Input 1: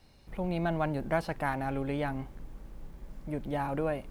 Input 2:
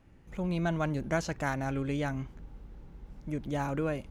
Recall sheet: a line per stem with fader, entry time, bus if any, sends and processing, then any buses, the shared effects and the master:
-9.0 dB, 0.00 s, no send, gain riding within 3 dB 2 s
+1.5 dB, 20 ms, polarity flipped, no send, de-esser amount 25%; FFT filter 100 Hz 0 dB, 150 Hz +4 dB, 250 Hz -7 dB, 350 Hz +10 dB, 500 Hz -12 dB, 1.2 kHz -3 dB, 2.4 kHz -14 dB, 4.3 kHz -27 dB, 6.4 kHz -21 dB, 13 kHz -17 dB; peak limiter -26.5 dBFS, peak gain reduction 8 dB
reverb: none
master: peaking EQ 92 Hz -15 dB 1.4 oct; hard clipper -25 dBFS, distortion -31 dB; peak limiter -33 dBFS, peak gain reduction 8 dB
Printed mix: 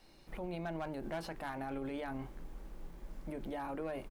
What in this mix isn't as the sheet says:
stem 1 -9.0 dB -> -1.0 dB; stem 2 +1.5 dB -> -5.5 dB

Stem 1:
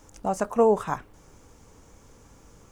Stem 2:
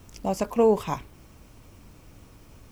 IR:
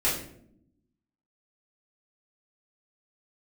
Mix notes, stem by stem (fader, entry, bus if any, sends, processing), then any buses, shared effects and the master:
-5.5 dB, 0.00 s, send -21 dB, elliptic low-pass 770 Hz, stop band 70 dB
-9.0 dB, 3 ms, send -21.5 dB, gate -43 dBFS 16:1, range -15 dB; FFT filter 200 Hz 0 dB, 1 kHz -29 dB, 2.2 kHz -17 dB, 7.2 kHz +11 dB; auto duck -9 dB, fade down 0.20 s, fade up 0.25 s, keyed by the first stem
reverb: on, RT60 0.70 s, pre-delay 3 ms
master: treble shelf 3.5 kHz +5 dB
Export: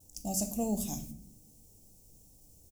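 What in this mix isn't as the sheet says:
stem 1 -5.5 dB -> -15.0 dB; stem 2 -9.0 dB -> +1.0 dB

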